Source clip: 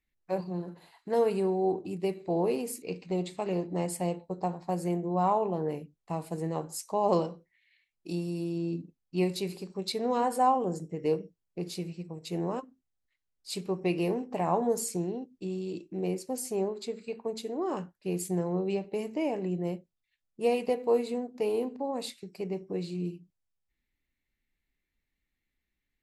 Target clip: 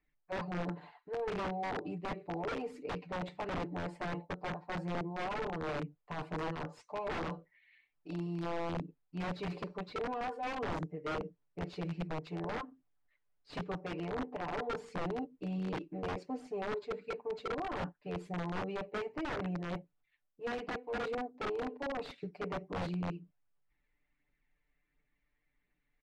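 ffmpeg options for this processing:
-filter_complex "[0:a]lowshelf=f=420:g=-10.5,acrossover=split=670[a][b];[b]asoftclip=type=hard:threshold=-35.5dB[c];[a][c]amix=inputs=2:normalize=0,aecho=1:1:6.8:1,areverse,acompressor=threshold=-40dB:ratio=12,areverse,highshelf=f=6.3k:g=-9,aphaser=in_gain=1:out_gain=1:delay=2.2:decay=0.31:speed=1.4:type=triangular,aeval=exprs='(mod(70.8*val(0)+1,2)-1)/70.8':c=same,adynamicsmooth=sensitivity=1.5:basefreq=2k,volume=7.5dB"

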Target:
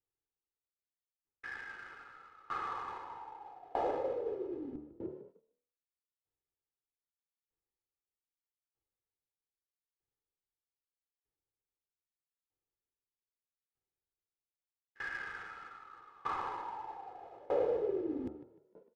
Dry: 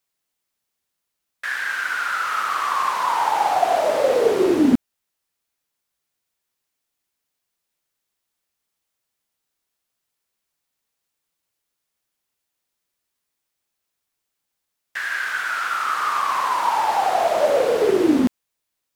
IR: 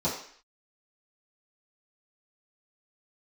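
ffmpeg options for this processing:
-filter_complex "[0:a]aecho=1:1:2.4:0.86,bandreject=f=74.66:t=h:w=4,bandreject=f=149.32:t=h:w=4,bandreject=f=223.98:t=h:w=4,bandreject=f=298.64:t=h:w=4,bandreject=f=373.3:t=h:w=4,bandreject=f=447.96:t=h:w=4,bandreject=f=522.62:t=h:w=4,bandreject=f=597.28:t=h:w=4,bandreject=f=671.94:t=h:w=4,bandreject=f=746.6:t=h:w=4,bandreject=f=821.26:t=h:w=4,bandreject=f=895.92:t=h:w=4,bandreject=f=970.58:t=h:w=4,bandreject=f=1.04524k:t=h:w=4,bandreject=f=1.1199k:t=h:w=4,bandreject=f=1.19456k:t=h:w=4,bandreject=f=1.26922k:t=h:w=4,bandreject=f=1.34388k:t=h:w=4,bandreject=f=1.41854k:t=h:w=4,bandreject=f=1.4932k:t=h:w=4,areverse,acompressor=threshold=-30dB:ratio=5,areverse,asplit=6[a][b][c][d][e][f];[b]adelay=151,afreqshift=37,volume=-10dB[g];[c]adelay=302,afreqshift=74,volume=-16.4dB[h];[d]adelay=453,afreqshift=111,volume=-22.8dB[i];[e]adelay=604,afreqshift=148,volume=-29.1dB[j];[f]adelay=755,afreqshift=185,volume=-35.5dB[k];[a][g][h][i][j][k]amix=inputs=6:normalize=0,adynamicsmooth=sensitivity=3.5:basefreq=2.2k,tiltshelf=f=690:g=8.5,agate=range=-11dB:threshold=-52dB:ratio=16:detection=peak,aeval=exprs='val(0)*pow(10,-25*if(lt(mod(0.8*n/s,1),2*abs(0.8)/1000),1-mod(0.8*n/s,1)/(2*abs(0.8)/1000),(mod(0.8*n/s,1)-2*abs(0.8)/1000)/(1-2*abs(0.8)/1000))/20)':c=same"

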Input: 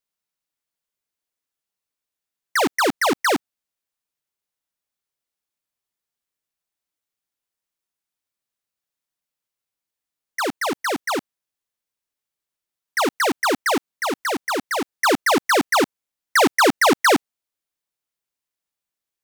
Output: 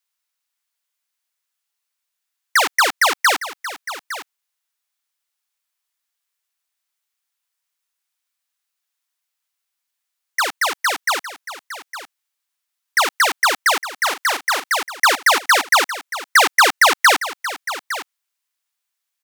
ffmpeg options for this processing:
-filter_complex "[0:a]highpass=1k,acontrast=44,asplit=2[a][b];[b]aecho=0:1:859:0.211[c];[a][c]amix=inputs=2:normalize=0,volume=1.5dB"

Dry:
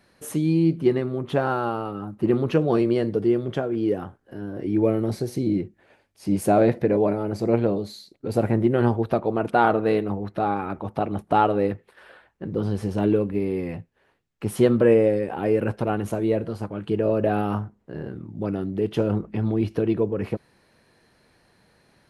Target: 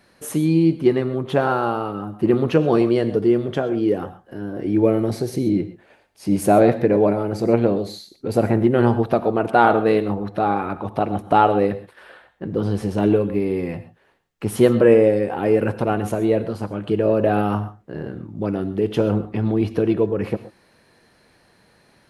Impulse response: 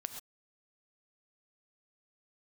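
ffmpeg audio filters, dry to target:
-filter_complex "[0:a]asplit=2[a][b];[1:a]atrim=start_sample=2205,lowshelf=f=130:g=-8.5[c];[b][c]afir=irnorm=-1:irlink=0,volume=1dB[d];[a][d]amix=inputs=2:normalize=0,volume=-1dB"

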